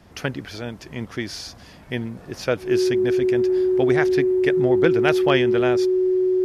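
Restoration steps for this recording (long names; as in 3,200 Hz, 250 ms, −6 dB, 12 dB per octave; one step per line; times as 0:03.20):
clipped peaks rebuilt −6.5 dBFS
notch filter 370 Hz, Q 30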